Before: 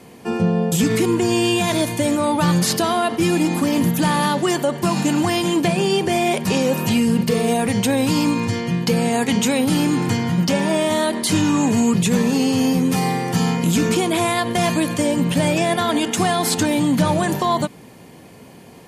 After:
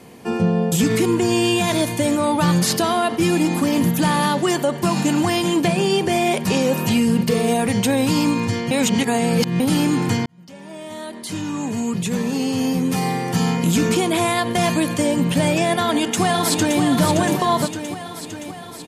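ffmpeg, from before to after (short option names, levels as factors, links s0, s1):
-filter_complex "[0:a]asplit=2[s0][s1];[s1]afade=t=in:st=15.72:d=0.01,afade=t=out:st=16.8:d=0.01,aecho=0:1:570|1140|1710|2280|2850|3420|3990|4560|5130:0.473151|0.307548|0.199906|0.129939|0.0844605|0.0548993|0.0356845|0.023195|0.0150767[s2];[s0][s2]amix=inputs=2:normalize=0,asplit=4[s3][s4][s5][s6];[s3]atrim=end=8.712[s7];[s4]atrim=start=8.708:end=9.602,asetpts=PTS-STARTPTS,areverse[s8];[s5]atrim=start=9.598:end=10.26,asetpts=PTS-STARTPTS,afade=t=out:st=0.658:d=0.004:c=hsin[s9];[s6]atrim=start=10.26,asetpts=PTS-STARTPTS,afade=t=in:d=3.34[s10];[s7][s8]acrossfade=d=0.004:c1=hsin:c2=hsin[s11];[s9][s10]concat=n=2:v=0:a=1[s12];[s11][s12]acrossfade=d=0.004:c1=hsin:c2=hsin"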